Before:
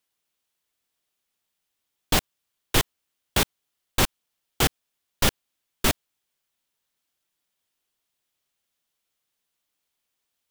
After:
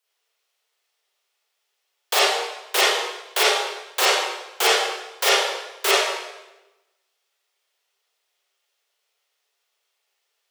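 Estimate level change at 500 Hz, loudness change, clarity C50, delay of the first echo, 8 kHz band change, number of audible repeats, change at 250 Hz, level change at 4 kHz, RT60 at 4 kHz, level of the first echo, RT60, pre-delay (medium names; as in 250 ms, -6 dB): +9.0 dB, +5.0 dB, -3.5 dB, no echo, +4.5 dB, no echo, -7.5 dB, +8.0 dB, 0.90 s, no echo, 1.0 s, 31 ms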